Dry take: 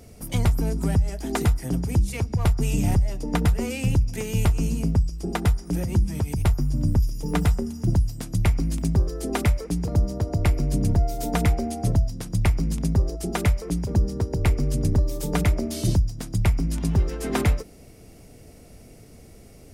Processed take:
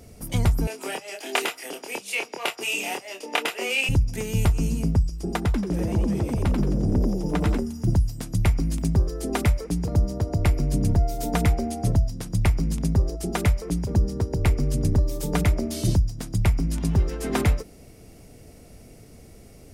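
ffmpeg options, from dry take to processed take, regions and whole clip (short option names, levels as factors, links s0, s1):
-filter_complex "[0:a]asettb=1/sr,asplit=3[s0][s1][s2];[s0]atrim=end=0.674[s3];[s1]atrim=start=0.67:end=3.89,asetpts=PTS-STARTPTS,afade=t=in:d=0.004:c=qsin,afade=t=out:st=3.216:d=0.004:c=qsin,highpass=f=390:w=0.5412,highpass=f=390:w=1.3066,equalizer=f=2700:w=1.8:g=12.5,asplit=2[s4][s5];[s5]adelay=26,volume=0.668[s6];[s4][s6]amix=inputs=2:normalize=0,atrim=end_sample=142002[s7];[s2]atrim=start=3.886[s8];[s3][s7]acrossfade=d=0.004:c1=hsin:c2=qsin[s9];[s9][s8]acrossfade=d=0.004:c1=qsin:c2=hsin,asettb=1/sr,asplit=3[s10][s11][s12];[s10]atrim=end=5.454[s13];[s11]atrim=start=5.45:end=7.58,asetpts=PTS-STARTPTS,afade=t=in:d=0.004:c=qsin,afade=t=out:st=2.126:d=0.004:c=qsin,highshelf=f=8200:g=-11,acompressor=threshold=0.1:ratio=2:attack=3.2:release=140:knee=1:detection=peak,asplit=6[s14][s15][s16][s17][s18][s19];[s15]adelay=88,afreqshift=150,volume=0.562[s20];[s16]adelay=176,afreqshift=300,volume=0.219[s21];[s17]adelay=264,afreqshift=450,volume=0.0851[s22];[s18]adelay=352,afreqshift=600,volume=0.0335[s23];[s19]adelay=440,afreqshift=750,volume=0.013[s24];[s14][s20][s21][s22][s23][s24]amix=inputs=6:normalize=0,atrim=end_sample=93933[s25];[s12]atrim=start=7.576[s26];[s13][s25]acrossfade=d=0.004:c1=hsin:c2=qsin[s27];[s27][s26]acrossfade=d=0.004:c1=qsin:c2=hsin"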